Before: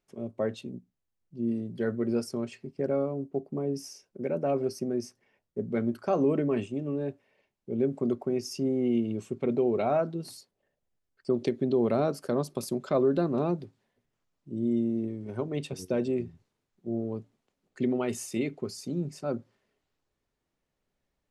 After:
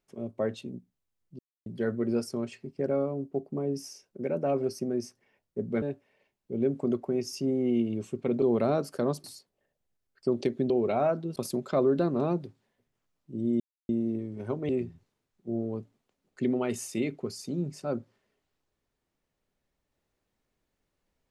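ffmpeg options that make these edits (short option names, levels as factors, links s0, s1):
-filter_complex "[0:a]asplit=10[s0][s1][s2][s3][s4][s5][s6][s7][s8][s9];[s0]atrim=end=1.39,asetpts=PTS-STARTPTS,afade=t=out:st=1.386:d=0.004:c=hsin[s10];[s1]atrim=start=1.39:end=1.66,asetpts=PTS-STARTPTS,volume=0[s11];[s2]atrim=start=1.66:end=5.822,asetpts=PTS-STARTPTS,afade=t=in:d=0.004:c=hsin[s12];[s3]atrim=start=6.998:end=9.602[s13];[s4]atrim=start=11.718:end=12.542[s14];[s5]atrim=start=10.258:end=11.722[s15];[s6]atrim=start=9.598:end=10.262[s16];[s7]atrim=start=12.538:end=14.78,asetpts=PTS-STARTPTS,afade=t=out:st=2.238:d=0.004:c=hsin,apad=pad_dur=0.29[s17];[s8]atrim=start=14.78:end=15.582,asetpts=PTS-STARTPTS,afade=t=in:d=0.004:c=hsin[s18];[s9]atrim=start=16.078[s19];[s10][s11][s12]concat=n=3:v=0:a=1[s20];[s20][s13]acrossfade=d=0.004:c1=hsin:c2=hsin[s21];[s21][s14]acrossfade=d=0.004:c1=hsin:c2=hsin[s22];[s22][s15]acrossfade=d=0.004:c1=hsin:c2=hsin[s23];[s23][s16]acrossfade=d=0.004:c1=hsin:c2=hsin[s24];[s17][s18]concat=n=2:v=0:a=1[s25];[s24][s25]acrossfade=d=0.004:c1=hsin:c2=hsin[s26];[s26][s19]acrossfade=d=0.004:c1=hsin:c2=hsin"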